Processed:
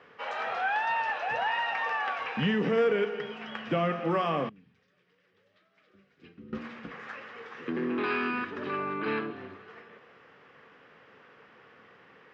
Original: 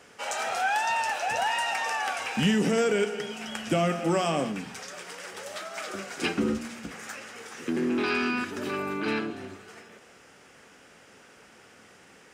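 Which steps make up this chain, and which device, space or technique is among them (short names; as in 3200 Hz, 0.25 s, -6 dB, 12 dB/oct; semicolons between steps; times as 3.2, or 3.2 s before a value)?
4.49–6.53 passive tone stack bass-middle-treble 10-0-1; guitar cabinet (speaker cabinet 75–3700 Hz, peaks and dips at 140 Hz +5 dB, 470 Hz +6 dB, 1100 Hz +9 dB, 1800 Hz +5 dB); gain -5 dB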